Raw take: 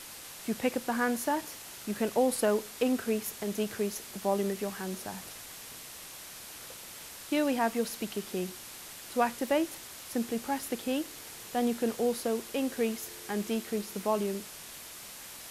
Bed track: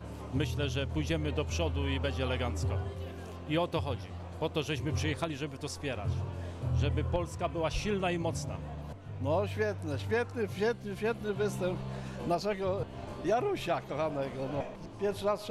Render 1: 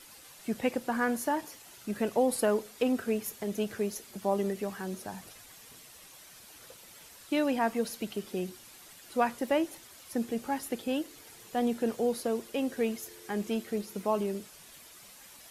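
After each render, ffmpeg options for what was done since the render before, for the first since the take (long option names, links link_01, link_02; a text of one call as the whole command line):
ffmpeg -i in.wav -af "afftdn=noise_reduction=9:noise_floor=-46" out.wav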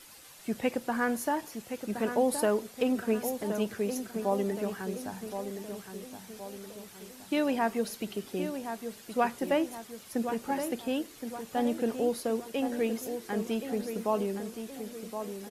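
ffmpeg -i in.wav -filter_complex "[0:a]asplit=2[link_01][link_02];[link_02]adelay=1070,lowpass=frequency=2000:poles=1,volume=-8dB,asplit=2[link_03][link_04];[link_04]adelay=1070,lowpass=frequency=2000:poles=1,volume=0.5,asplit=2[link_05][link_06];[link_06]adelay=1070,lowpass=frequency=2000:poles=1,volume=0.5,asplit=2[link_07][link_08];[link_08]adelay=1070,lowpass=frequency=2000:poles=1,volume=0.5,asplit=2[link_09][link_10];[link_10]adelay=1070,lowpass=frequency=2000:poles=1,volume=0.5,asplit=2[link_11][link_12];[link_12]adelay=1070,lowpass=frequency=2000:poles=1,volume=0.5[link_13];[link_01][link_03][link_05][link_07][link_09][link_11][link_13]amix=inputs=7:normalize=0" out.wav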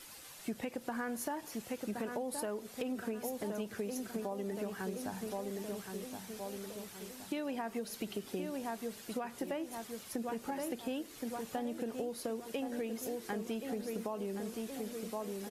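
ffmpeg -i in.wav -af "alimiter=limit=-21.5dB:level=0:latency=1:release=182,acompressor=threshold=-35dB:ratio=6" out.wav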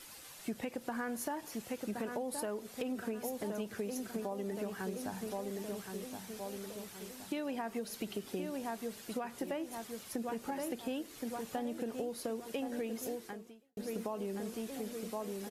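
ffmpeg -i in.wav -filter_complex "[0:a]asplit=2[link_01][link_02];[link_01]atrim=end=13.77,asetpts=PTS-STARTPTS,afade=type=out:start_time=13.11:duration=0.66:curve=qua[link_03];[link_02]atrim=start=13.77,asetpts=PTS-STARTPTS,afade=type=in:duration=0.004:curve=hsin[link_04];[link_03][link_04]concat=n=2:v=0:a=1" out.wav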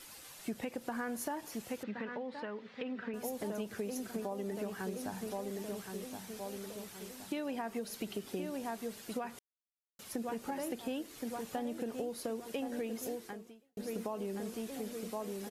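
ffmpeg -i in.wav -filter_complex "[0:a]asettb=1/sr,asplit=3[link_01][link_02][link_03];[link_01]atrim=end=1.834[link_04];[link_02]atrim=start=1.83:end=3.14,asetpts=PTS-STARTPTS,afade=type=in:duration=0.004:curve=qsin,afade=type=out:start_time=1.306:duration=0.004:curve=qsin,highpass=160,equalizer=frequency=350:width_type=q:width=4:gain=-10,equalizer=frequency=680:width_type=q:width=4:gain=-8,equalizer=frequency=1900:width_type=q:width=4:gain=6,lowpass=frequency=3800:width=0.5412,lowpass=frequency=3800:width=1.3066[link_05];[link_03]atrim=start=3.136[link_06];[link_04][link_05]acrossfade=duration=0.004:curve1=hsin:curve2=qsin[link_07];[link_07][link_06]acrossfade=duration=0.004:curve1=qsin:curve2=hsin,asplit=3[link_08][link_09][link_10];[link_08]atrim=end=9.39,asetpts=PTS-STARTPTS,afade=type=out:start_time=9.386:duration=0.004:curve=hsin[link_11];[link_09]atrim=start=9.39:end=9.99,asetpts=PTS-STARTPTS,volume=0[link_12];[link_10]atrim=start=9.99,asetpts=PTS-STARTPTS,afade=type=in:duration=0.004:curve=hsin[link_13];[link_11][link_12][link_13]concat=n=3:v=0:a=1" out.wav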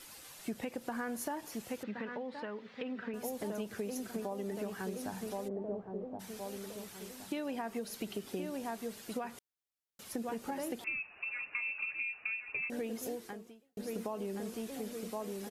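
ffmpeg -i in.wav -filter_complex "[0:a]asplit=3[link_01][link_02][link_03];[link_01]afade=type=out:start_time=5.47:duration=0.02[link_04];[link_02]lowpass=frequency=670:width_type=q:width=1.7,afade=type=in:start_time=5.47:duration=0.02,afade=type=out:start_time=6.19:duration=0.02[link_05];[link_03]afade=type=in:start_time=6.19:duration=0.02[link_06];[link_04][link_05][link_06]amix=inputs=3:normalize=0,asettb=1/sr,asplit=3[link_07][link_08][link_09];[link_07]atrim=end=10.844[link_10];[link_08]atrim=start=10.84:end=12.7,asetpts=PTS-STARTPTS,afade=type=in:duration=0.004:curve=qsin,afade=type=out:start_time=1.856:duration=0.004:curve=qsin,lowpass=frequency=2500:width_type=q:width=0.5098,lowpass=frequency=2500:width_type=q:width=0.6013,lowpass=frequency=2500:width_type=q:width=0.9,lowpass=frequency=2500:width_type=q:width=2.563,afreqshift=-2900[link_11];[link_09]atrim=start=12.696[link_12];[link_10][link_11]acrossfade=duration=0.004:curve1=hsin:curve2=qsin[link_13];[link_13][link_12]acrossfade=duration=0.004:curve1=qsin:curve2=hsin" out.wav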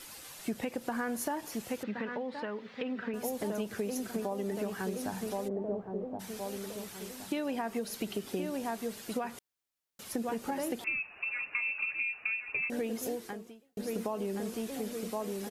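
ffmpeg -i in.wav -af "volume=4dB" out.wav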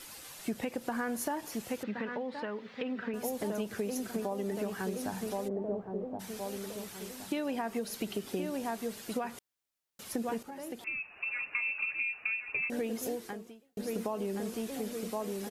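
ffmpeg -i in.wav -filter_complex "[0:a]asplit=2[link_01][link_02];[link_01]atrim=end=10.43,asetpts=PTS-STARTPTS,afade=type=out:start_time=10.426:duration=0.004:curve=hsin:silence=0.237137[link_03];[link_02]atrim=start=10.43,asetpts=PTS-STARTPTS,afade=type=in:duration=0.89:silence=0.237137[link_04];[link_03][link_04]concat=n=2:v=0:a=1" out.wav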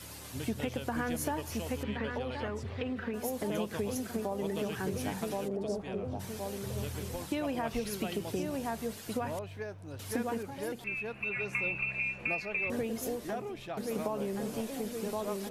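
ffmpeg -i in.wav -i bed.wav -filter_complex "[1:a]volume=-9dB[link_01];[0:a][link_01]amix=inputs=2:normalize=0" out.wav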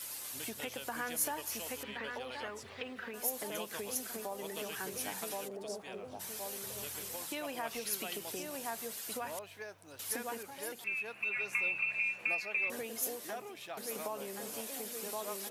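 ffmpeg -i in.wav -af "highpass=frequency=970:poles=1,highshelf=frequency=8600:gain=10.5" out.wav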